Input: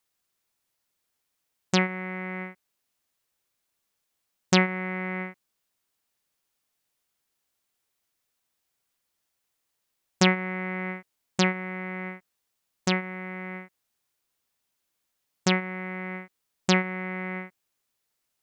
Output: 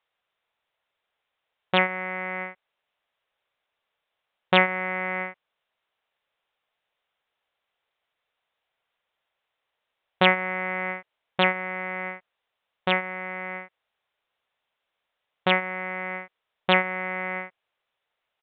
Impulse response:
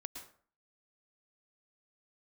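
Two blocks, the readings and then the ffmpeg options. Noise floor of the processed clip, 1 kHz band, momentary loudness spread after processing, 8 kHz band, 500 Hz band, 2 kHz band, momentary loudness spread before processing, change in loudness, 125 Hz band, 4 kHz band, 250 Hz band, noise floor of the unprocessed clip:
-83 dBFS, +6.0 dB, 15 LU, under -40 dB, +3.5 dB, +5.0 dB, 16 LU, +2.5 dB, -5.5 dB, +2.0 dB, -5.0 dB, -80 dBFS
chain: -af "lowshelf=f=400:t=q:w=1.5:g=-8.5,aresample=8000,aresample=44100,volume=1.68"

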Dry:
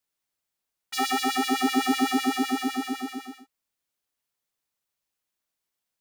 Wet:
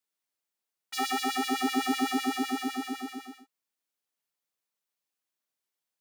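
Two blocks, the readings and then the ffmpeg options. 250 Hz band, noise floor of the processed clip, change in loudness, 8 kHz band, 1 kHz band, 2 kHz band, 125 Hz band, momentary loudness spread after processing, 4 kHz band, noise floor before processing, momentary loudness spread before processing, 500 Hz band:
-4.5 dB, under -85 dBFS, -4.5 dB, -4.0 dB, -4.0 dB, -4.0 dB, no reading, 11 LU, -4.0 dB, -85 dBFS, 11 LU, -4.0 dB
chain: -af "highpass=170,volume=0.631"

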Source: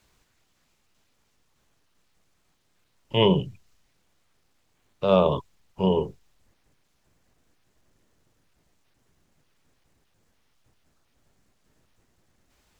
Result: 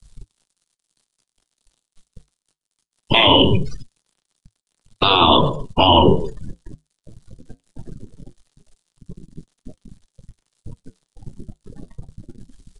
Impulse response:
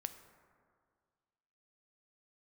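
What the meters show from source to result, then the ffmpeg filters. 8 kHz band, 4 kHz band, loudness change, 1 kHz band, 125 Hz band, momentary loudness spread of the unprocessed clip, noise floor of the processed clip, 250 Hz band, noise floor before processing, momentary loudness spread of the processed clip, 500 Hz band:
no reading, +17.0 dB, +9.0 dB, +14.5 dB, +7.5 dB, 12 LU, -82 dBFS, +7.5 dB, -69 dBFS, 10 LU, +4.5 dB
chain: -filter_complex "[0:a]acrusher=bits=9:mix=0:aa=0.000001,acompressor=threshold=0.0447:ratio=2,aecho=1:1:126|252:0.0841|0.0261,afftdn=nr=32:nf=-57,equalizer=f=70:w=3.1:g=-13.5,acrossover=split=460|960|2500[s0][s1][s2][s3];[s0]acompressor=threshold=0.0282:ratio=4[s4];[s1]acompressor=threshold=0.0141:ratio=4[s5];[s3]acompressor=threshold=0.0112:ratio=4[s6];[s4][s5][s2][s6]amix=inputs=4:normalize=0,aresample=22050,aresample=44100,aexciter=amount=2.5:drive=5.8:freq=3300,lowshelf=f=310:g=5.5,flanger=delay=4.1:depth=6.3:regen=-71:speed=0.21:shape=triangular,afftfilt=real='re*lt(hypot(re,im),0.0562)':imag='im*lt(hypot(re,im),0.0562)':win_size=1024:overlap=0.75,alimiter=level_in=63.1:limit=0.891:release=50:level=0:latency=1,volume=0.891"

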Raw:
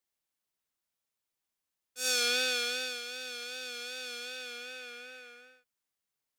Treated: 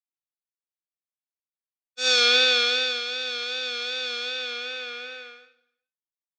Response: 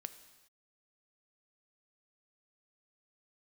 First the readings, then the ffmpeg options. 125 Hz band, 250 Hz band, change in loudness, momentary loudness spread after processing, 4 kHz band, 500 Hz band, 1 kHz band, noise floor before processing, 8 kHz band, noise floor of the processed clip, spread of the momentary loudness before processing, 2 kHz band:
no reading, +6.0 dB, +10.5 dB, 17 LU, +12.0 dB, +10.0 dB, +10.5 dB, under -85 dBFS, +1.0 dB, under -85 dBFS, 19 LU, +9.5 dB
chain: -filter_complex "[0:a]agate=range=0.0224:threshold=0.00501:ratio=3:detection=peak,highpass=280,equalizer=f=390:t=q:w=4:g=6,equalizer=f=1100:t=q:w=4:g=8,equalizer=f=2100:t=q:w=4:g=4,equalizer=f=3700:t=q:w=4:g=8,lowpass=f=5800:w=0.5412,lowpass=f=5800:w=1.3066,asplit=2[s0][s1];[1:a]atrim=start_sample=2205,lowshelf=f=370:g=11[s2];[s1][s2]afir=irnorm=-1:irlink=0,volume=0.891[s3];[s0][s3]amix=inputs=2:normalize=0,volume=1.5"

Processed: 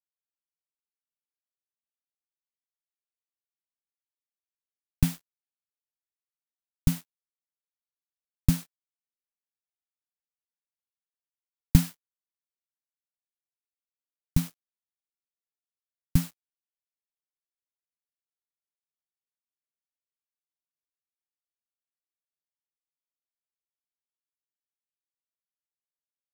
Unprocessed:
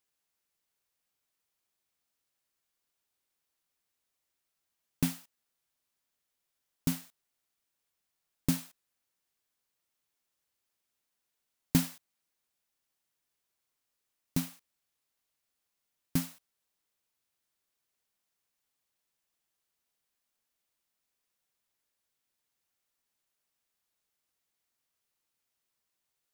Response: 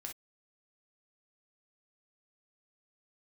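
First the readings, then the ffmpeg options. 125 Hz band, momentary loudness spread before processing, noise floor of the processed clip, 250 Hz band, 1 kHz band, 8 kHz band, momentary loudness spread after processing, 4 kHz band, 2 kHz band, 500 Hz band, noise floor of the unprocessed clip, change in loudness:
+9.5 dB, 13 LU, under -85 dBFS, +3.5 dB, 0.0 dB, +1.0 dB, 13 LU, +1.0 dB, +1.0 dB, -3.0 dB, -84 dBFS, +5.5 dB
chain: -af "asubboost=boost=11:cutoff=98,acrusher=bits=6:mix=0:aa=0.5,volume=1.12"

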